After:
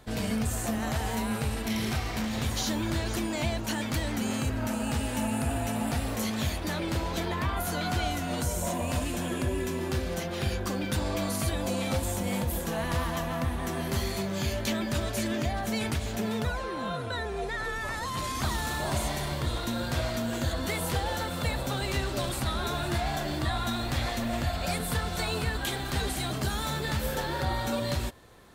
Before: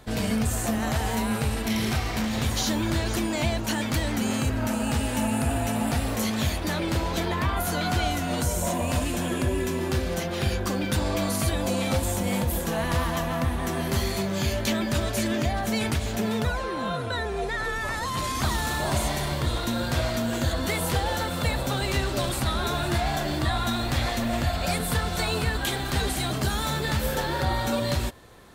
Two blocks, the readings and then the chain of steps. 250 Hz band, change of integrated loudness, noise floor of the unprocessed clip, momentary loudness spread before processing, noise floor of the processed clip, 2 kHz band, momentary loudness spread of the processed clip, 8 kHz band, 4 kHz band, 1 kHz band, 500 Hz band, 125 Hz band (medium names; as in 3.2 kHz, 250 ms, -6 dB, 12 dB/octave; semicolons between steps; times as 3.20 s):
-4.0 dB, -4.0 dB, -30 dBFS, 2 LU, -34 dBFS, -4.0 dB, 2 LU, -4.0 dB, -4.0 dB, -4.0 dB, -4.0 dB, -4.0 dB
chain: crackle 40 per s -52 dBFS; trim -4 dB